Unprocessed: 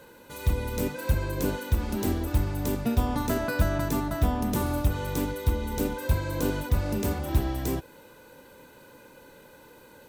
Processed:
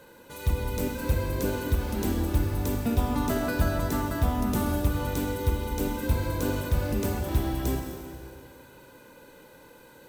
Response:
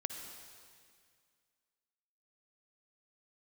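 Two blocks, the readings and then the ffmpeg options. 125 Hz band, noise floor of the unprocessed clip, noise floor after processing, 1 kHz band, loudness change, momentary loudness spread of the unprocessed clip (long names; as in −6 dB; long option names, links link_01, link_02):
0.0 dB, −52 dBFS, −52 dBFS, 0.0 dB, 0.0 dB, 4 LU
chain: -filter_complex "[1:a]atrim=start_sample=2205[link_01];[0:a][link_01]afir=irnorm=-1:irlink=0"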